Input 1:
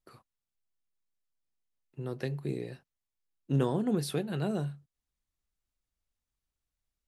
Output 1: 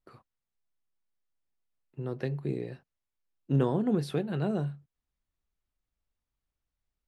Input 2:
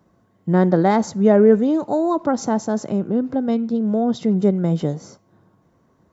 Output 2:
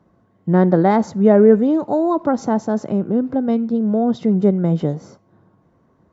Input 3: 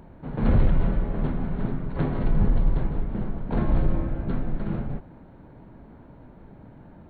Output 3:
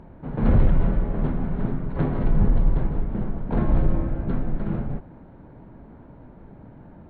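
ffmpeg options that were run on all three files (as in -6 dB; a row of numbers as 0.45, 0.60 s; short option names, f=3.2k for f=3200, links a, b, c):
-af "lowpass=f=2.3k:p=1,volume=2dB"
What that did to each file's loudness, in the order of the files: +2.0, +2.0, +2.0 LU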